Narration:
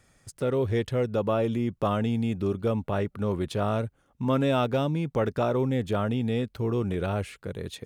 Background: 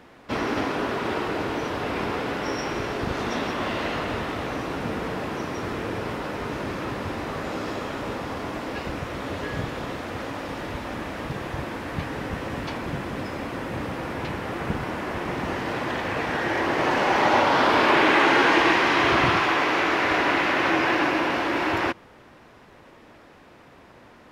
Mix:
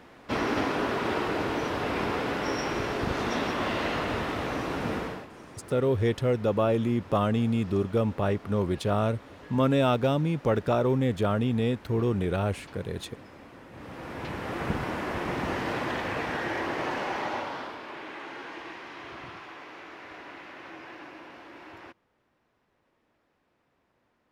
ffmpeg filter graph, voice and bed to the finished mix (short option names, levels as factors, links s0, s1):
-filter_complex "[0:a]adelay=5300,volume=1.12[s0];[1:a]volume=4.73,afade=t=out:st=4.95:d=0.32:silence=0.16788,afade=t=in:st=13.72:d=0.91:silence=0.177828,afade=t=out:st=15.67:d=2.11:silence=0.0944061[s1];[s0][s1]amix=inputs=2:normalize=0"